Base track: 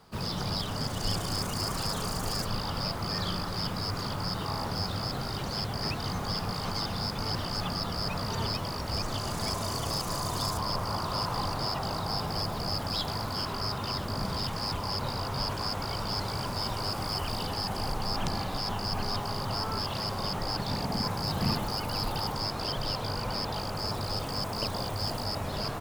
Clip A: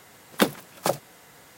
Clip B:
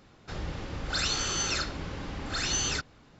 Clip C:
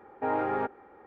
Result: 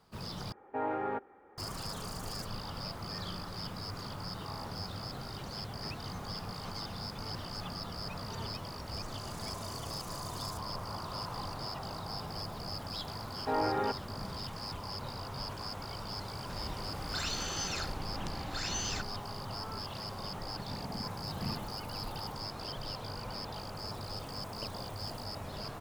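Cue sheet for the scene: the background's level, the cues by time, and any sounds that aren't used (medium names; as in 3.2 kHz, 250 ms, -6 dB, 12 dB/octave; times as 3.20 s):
base track -8.5 dB
0.52 s: replace with C -5.5 dB
13.25 s: add C -2.5 dB
16.21 s: add B -7.5 dB
not used: A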